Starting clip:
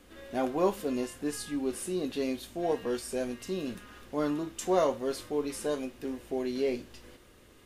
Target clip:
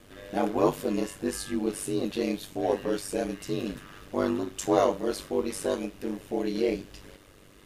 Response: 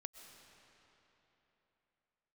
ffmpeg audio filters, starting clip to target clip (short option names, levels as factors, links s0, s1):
-af "aeval=exprs='val(0)*sin(2*PI*49*n/s)':c=same,volume=2"